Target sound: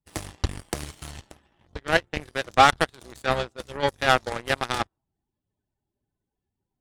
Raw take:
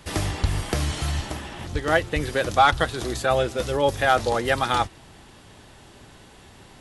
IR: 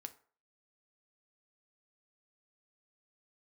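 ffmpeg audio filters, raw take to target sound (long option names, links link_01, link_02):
-af "afftdn=noise_reduction=18:noise_floor=-44,equalizer=frequency=9000:width=1.4:gain=7,aeval=exprs='0.501*(cos(1*acos(clip(val(0)/0.501,-1,1)))-cos(1*PI/2))+0.112*(cos(3*acos(clip(val(0)/0.501,-1,1)))-cos(3*PI/2))+0.0224*(cos(7*acos(clip(val(0)/0.501,-1,1)))-cos(7*PI/2))':channel_layout=same,volume=3.5dB"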